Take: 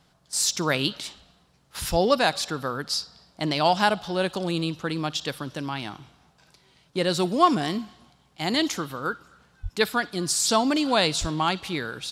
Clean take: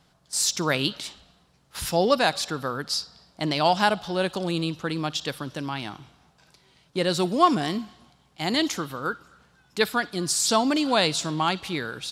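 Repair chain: 1.9–2.02 HPF 140 Hz 24 dB/oct; 9.62–9.74 HPF 140 Hz 24 dB/oct; 11.2–11.32 HPF 140 Hz 24 dB/oct

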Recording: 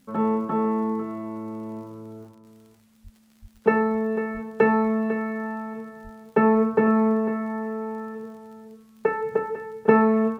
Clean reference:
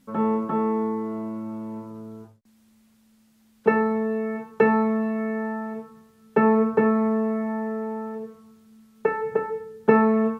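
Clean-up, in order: de-click; de-plosive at 3.03/3.41/4.33/6.03; inverse comb 0.499 s -12.5 dB

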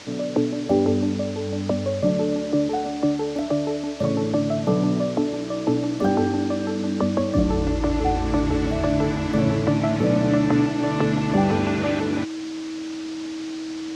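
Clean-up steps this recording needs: notch 320 Hz, Q 30; noise print and reduce 30 dB

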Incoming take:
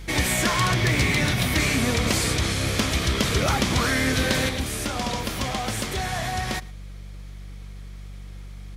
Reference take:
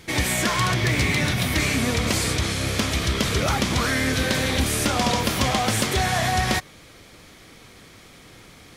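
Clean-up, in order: de-hum 48.4 Hz, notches 4; inverse comb 0.112 s -22.5 dB; gain 0 dB, from 4.49 s +6 dB

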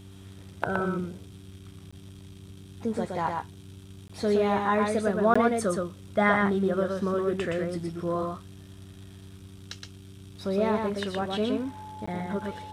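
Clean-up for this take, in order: de-hum 96.3 Hz, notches 4; notch 860 Hz, Q 30; interpolate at 1.91/4.08/5.34/12.06, 15 ms; inverse comb 0.119 s -3.5 dB

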